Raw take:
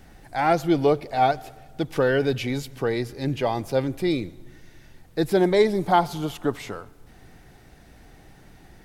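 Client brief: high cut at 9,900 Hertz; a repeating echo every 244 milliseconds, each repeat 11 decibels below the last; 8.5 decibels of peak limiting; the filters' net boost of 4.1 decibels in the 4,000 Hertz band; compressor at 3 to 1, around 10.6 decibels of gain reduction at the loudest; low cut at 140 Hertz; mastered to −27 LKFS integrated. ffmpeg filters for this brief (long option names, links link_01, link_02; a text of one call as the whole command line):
ffmpeg -i in.wav -af "highpass=140,lowpass=9900,equalizer=frequency=4000:width_type=o:gain=5,acompressor=threshold=-29dB:ratio=3,alimiter=level_in=1.5dB:limit=-24dB:level=0:latency=1,volume=-1.5dB,aecho=1:1:244|488|732:0.282|0.0789|0.0221,volume=9dB" out.wav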